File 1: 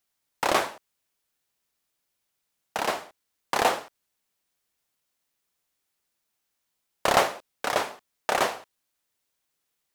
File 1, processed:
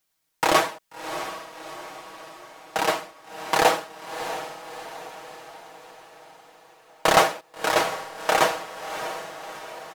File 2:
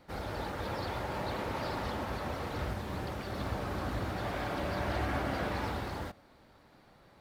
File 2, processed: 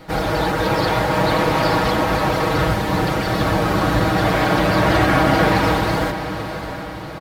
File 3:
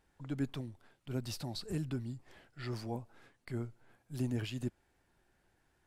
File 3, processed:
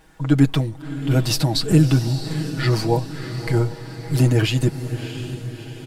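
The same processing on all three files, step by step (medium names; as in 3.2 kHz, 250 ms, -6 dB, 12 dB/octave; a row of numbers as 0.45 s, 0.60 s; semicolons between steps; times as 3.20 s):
comb 6.3 ms, depth 71%; echo that smears into a reverb 658 ms, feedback 54%, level -10.5 dB; peak normalisation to -3 dBFS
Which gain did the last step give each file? +2.5 dB, +16.5 dB, +19.0 dB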